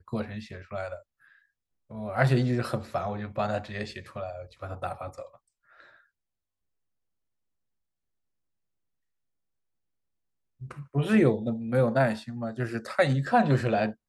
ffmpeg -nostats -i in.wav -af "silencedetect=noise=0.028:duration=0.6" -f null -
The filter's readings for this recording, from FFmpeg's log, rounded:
silence_start: 0.94
silence_end: 1.98 | silence_duration: 1.03
silence_start: 5.22
silence_end: 10.71 | silence_duration: 5.49